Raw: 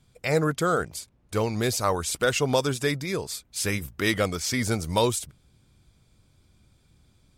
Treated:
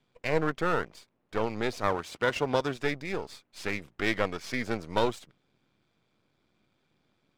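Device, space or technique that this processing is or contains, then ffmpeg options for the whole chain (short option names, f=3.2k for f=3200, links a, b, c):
crystal radio: -filter_complex "[0:a]highpass=240,lowpass=3.1k,aeval=exprs='if(lt(val(0),0),0.251*val(0),val(0))':c=same,asettb=1/sr,asplit=3[a][b][c];[a]atrim=end=1.874[d];[b]atrim=start=1.87:end=2.76,asetpts=PTS-STARTPTS,afade=t=in:d=0.004:c=qsin,afade=t=out:st=0.886:d=0.004:c=qsin,highpass=44[e];[c]atrim=start=2.756[f];[d][e]acrossfade=d=0.004:c1=hsin:c2=qsin[g];[g][f]acrossfade=d=0.004:c1=qsin:c2=hsin"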